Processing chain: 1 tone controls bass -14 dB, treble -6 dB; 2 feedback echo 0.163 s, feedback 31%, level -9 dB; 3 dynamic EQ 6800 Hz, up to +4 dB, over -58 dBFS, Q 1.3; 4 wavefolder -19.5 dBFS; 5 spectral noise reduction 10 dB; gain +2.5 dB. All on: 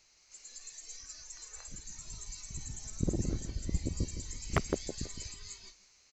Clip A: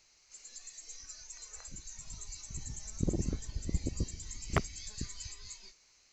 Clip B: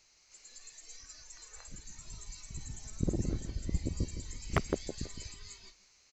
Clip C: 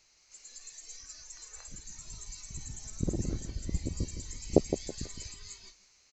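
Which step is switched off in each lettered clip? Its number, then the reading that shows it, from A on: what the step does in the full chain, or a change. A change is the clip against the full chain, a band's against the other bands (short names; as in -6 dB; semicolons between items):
2, 500 Hz band -2.0 dB; 3, momentary loudness spread change +3 LU; 4, distortion -2 dB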